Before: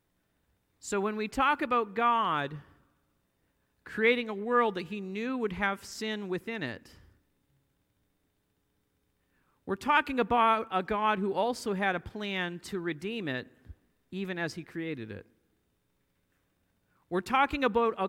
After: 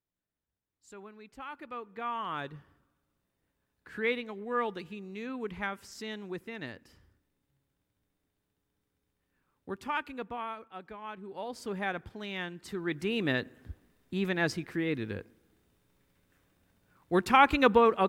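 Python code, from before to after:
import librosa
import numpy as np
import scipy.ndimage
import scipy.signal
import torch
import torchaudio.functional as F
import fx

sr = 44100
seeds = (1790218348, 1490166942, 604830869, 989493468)

y = fx.gain(x, sr, db=fx.line((1.38, -18.0), (2.43, -5.5), (9.71, -5.5), (10.54, -15.0), (11.21, -15.0), (11.69, -4.5), (12.62, -4.5), (13.11, 4.5)))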